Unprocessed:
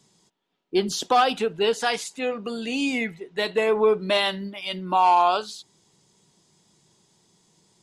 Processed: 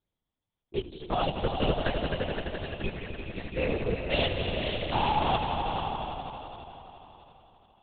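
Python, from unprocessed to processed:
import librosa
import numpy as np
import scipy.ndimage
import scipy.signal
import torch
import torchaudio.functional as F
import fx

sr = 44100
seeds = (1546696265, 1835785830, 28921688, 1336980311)

y = scipy.signal.sosfilt(scipy.signal.butter(4, 140.0, 'highpass', fs=sr, output='sos'), x)
y = fx.env_flanger(y, sr, rest_ms=8.9, full_db=-17.5)
y = fx.level_steps(y, sr, step_db=13)
y = fx.echo_swell(y, sr, ms=85, loudest=5, wet_db=-7)
y = fx.lpc_vocoder(y, sr, seeds[0], excitation='whisper', order=8)
y = fx.upward_expand(y, sr, threshold_db=-35.0, expansion=1.5)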